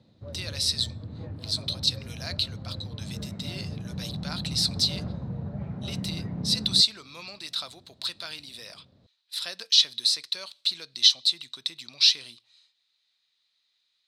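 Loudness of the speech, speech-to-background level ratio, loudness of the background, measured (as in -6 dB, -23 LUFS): -25.0 LUFS, 11.5 dB, -36.5 LUFS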